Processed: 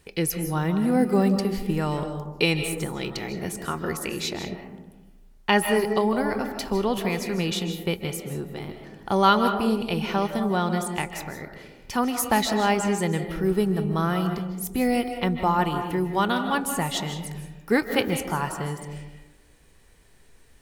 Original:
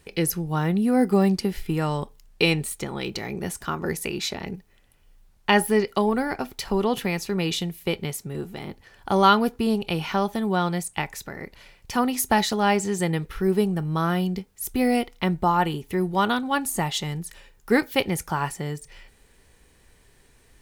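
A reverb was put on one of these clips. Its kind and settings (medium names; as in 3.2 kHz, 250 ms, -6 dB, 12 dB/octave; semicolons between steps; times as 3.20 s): algorithmic reverb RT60 1.1 s, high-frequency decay 0.3×, pre-delay 115 ms, DRR 6.5 dB; trim -1.5 dB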